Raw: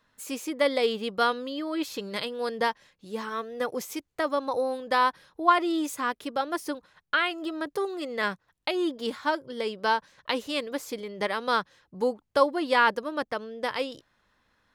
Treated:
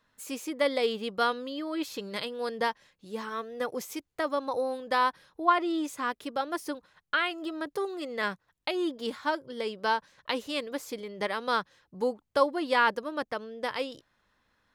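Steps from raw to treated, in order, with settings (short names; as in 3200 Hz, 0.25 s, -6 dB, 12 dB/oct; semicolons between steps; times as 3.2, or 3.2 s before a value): 5.44–6 high shelf 4800 Hz -> 9600 Hz -8 dB; gain -2.5 dB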